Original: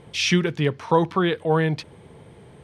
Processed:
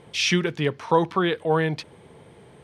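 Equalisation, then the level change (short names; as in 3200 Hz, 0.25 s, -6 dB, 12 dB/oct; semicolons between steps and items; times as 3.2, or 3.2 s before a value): low shelf 160 Hz -7.5 dB; 0.0 dB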